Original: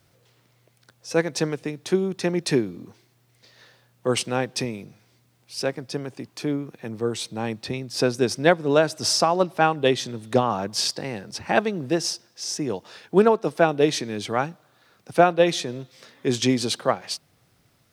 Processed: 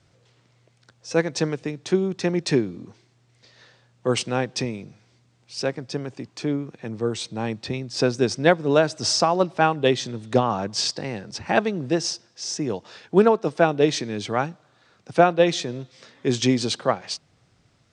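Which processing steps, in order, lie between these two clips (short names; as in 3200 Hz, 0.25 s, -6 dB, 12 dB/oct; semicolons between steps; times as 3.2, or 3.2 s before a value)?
steep low-pass 8200 Hz 36 dB/oct; low shelf 160 Hz +3.5 dB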